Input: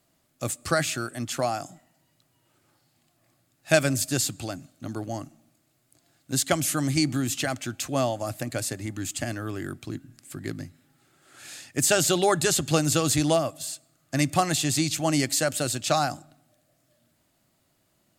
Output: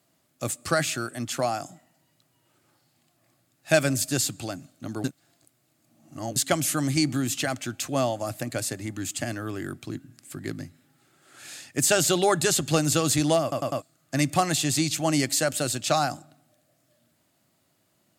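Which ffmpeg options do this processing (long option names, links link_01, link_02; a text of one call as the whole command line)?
ffmpeg -i in.wav -filter_complex "[0:a]asplit=7[link_01][link_02][link_03][link_04][link_05][link_06][link_07];[link_01]atrim=end=5.042[link_08];[link_02]atrim=start=5.038:end=6.362,asetpts=PTS-STARTPTS,areverse[link_09];[link_03]atrim=start=6.358:end=13.522[link_10];[link_04]atrim=start=13.418:end=13.522[link_11];[link_05]atrim=start=13.418:end=13.522[link_12];[link_06]atrim=start=13.418:end=13.522[link_13];[link_07]atrim=start=13.818[link_14];[link_08][link_09]acrossfade=duration=0.004:curve1=hsin:curve2=hsin[link_15];[link_15][link_10]acrossfade=duration=0.004:curve1=hsin:curve2=hsin[link_16];[link_16][link_11]acrossfade=duration=0.004:curve1=hsin:curve2=hsin[link_17];[link_17][link_12]acrossfade=duration=0.004:curve1=hsin:curve2=hsin[link_18];[link_18][link_13]acrossfade=duration=0.004:curve1=hsin:curve2=hsin[link_19];[link_19][link_14]acrossfade=duration=0.004:curve1=hsin:curve2=hsin,highpass=91,acontrast=23,volume=-4.5dB" out.wav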